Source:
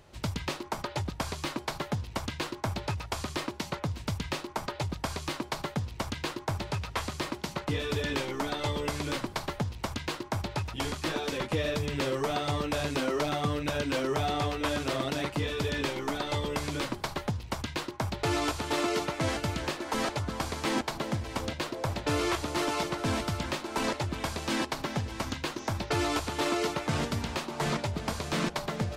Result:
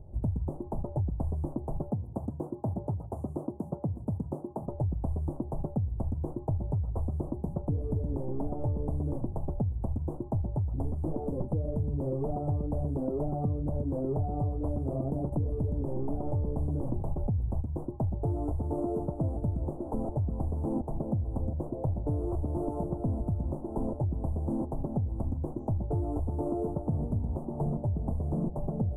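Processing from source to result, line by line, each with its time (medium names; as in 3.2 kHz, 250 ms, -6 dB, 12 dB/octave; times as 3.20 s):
1.90–4.68 s: high-pass 150 Hz
15.32–17.61 s: level flattener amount 50%
whole clip: elliptic band-stop 770–9600 Hz, stop band 50 dB; RIAA curve playback; compression 5:1, threshold -25 dBFS; trim -2 dB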